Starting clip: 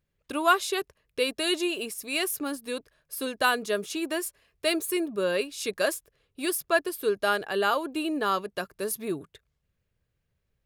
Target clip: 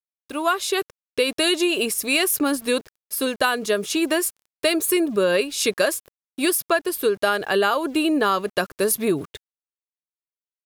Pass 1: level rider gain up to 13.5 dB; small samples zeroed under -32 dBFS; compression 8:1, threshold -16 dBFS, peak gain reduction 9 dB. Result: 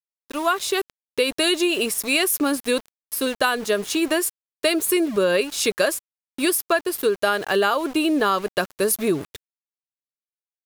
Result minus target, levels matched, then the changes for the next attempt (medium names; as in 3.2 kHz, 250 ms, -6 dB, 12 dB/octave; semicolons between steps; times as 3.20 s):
small samples zeroed: distortion +14 dB
change: small samples zeroed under -43.5 dBFS